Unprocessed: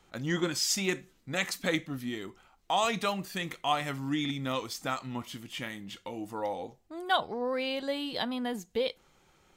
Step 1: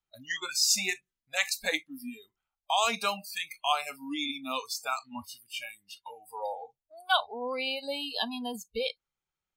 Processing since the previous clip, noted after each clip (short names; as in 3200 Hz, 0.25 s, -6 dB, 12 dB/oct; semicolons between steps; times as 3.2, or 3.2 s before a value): spectral noise reduction 30 dB; bell 350 Hz -8.5 dB 2.4 oct; gain +4.5 dB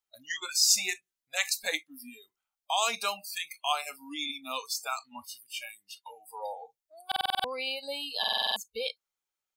tone controls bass -13 dB, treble +5 dB; stuck buffer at 7.07/8.19, samples 2048, times 7; gain -2 dB